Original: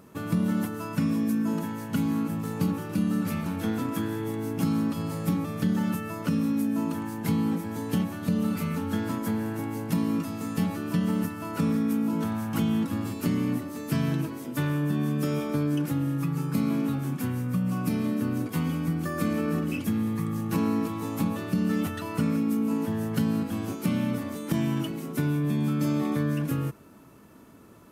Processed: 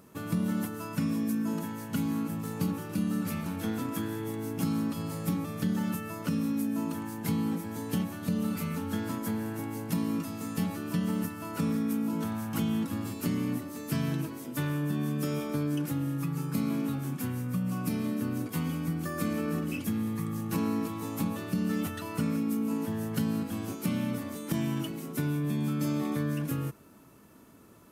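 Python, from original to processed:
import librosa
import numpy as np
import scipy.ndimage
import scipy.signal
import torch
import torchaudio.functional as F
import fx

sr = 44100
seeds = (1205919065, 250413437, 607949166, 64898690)

y = fx.high_shelf(x, sr, hz=4400.0, db=5.0)
y = y * librosa.db_to_amplitude(-4.0)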